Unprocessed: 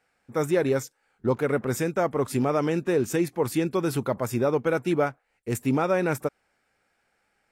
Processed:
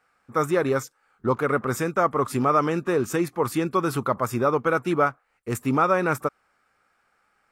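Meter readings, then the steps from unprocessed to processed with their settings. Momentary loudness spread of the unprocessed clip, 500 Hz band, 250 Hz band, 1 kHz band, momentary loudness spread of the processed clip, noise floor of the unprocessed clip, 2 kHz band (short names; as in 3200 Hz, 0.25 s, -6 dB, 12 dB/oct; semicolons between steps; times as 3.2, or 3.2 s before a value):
7 LU, +0.5 dB, 0.0 dB, +7.5 dB, 8 LU, -73 dBFS, +4.0 dB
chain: bell 1200 Hz +12.5 dB 0.52 oct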